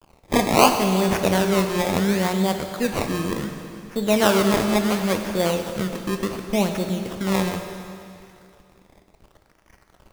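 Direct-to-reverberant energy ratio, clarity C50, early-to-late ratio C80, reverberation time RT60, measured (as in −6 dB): 5.0 dB, 6.0 dB, 7.0 dB, 2.5 s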